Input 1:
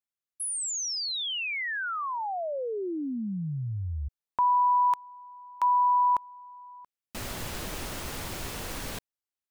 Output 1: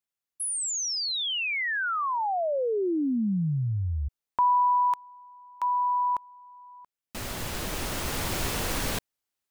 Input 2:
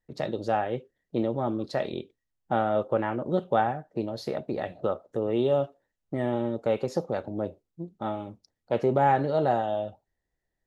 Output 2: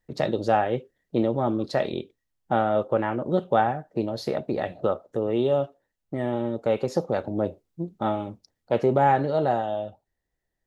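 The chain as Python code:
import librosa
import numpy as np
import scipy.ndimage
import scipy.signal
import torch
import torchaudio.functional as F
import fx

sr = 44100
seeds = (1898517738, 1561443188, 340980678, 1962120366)

y = fx.rider(x, sr, range_db=5, speed_s=2.0)
y = F.gain(torch.from_numpy(y), 2.0).numpy()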